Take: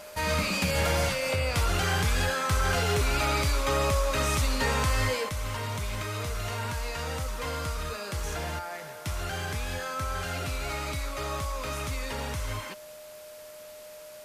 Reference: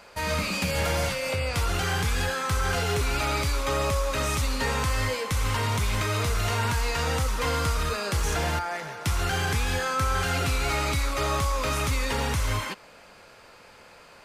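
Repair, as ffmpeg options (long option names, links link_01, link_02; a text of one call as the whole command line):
ffmpeg -i in.wav -af "bandreject=frequency=610:width=30,afwtdn=0.0028,asetnsamples=nb_out_samples=441:pad=0,asendcmd='5.29 volume volume 7dB',volume=0dB" out.wav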